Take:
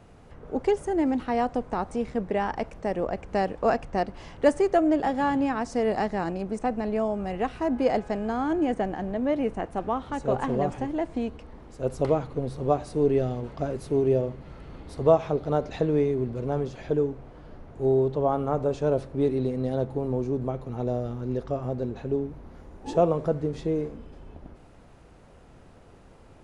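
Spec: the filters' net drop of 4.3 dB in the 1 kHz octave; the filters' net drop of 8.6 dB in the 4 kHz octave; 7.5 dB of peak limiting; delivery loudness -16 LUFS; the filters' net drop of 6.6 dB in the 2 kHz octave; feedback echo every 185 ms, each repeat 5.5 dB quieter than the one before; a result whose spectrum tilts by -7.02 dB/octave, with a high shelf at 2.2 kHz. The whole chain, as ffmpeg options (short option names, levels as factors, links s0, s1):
-af "equalizer=f=1000:t=o:g=-5,equalizer=f=2000:t=o:g=-3,highshelf=f=2200:g=-5,equalizer=f=4000:t=o:g=-5.5,alimiter=limit=0.126:level=0:latency=1,aecho=1:1:185|370|555|740|925|1110|1295:0.531|0.281|0.149|0.079|0.0419|0.0222|0.0118,volume=4.22"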